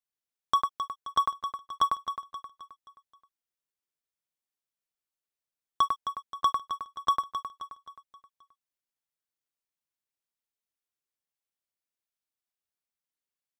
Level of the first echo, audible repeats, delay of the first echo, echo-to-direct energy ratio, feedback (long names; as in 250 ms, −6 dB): −9.0 dB, 4, 264 ms, −8.0 dB, 45%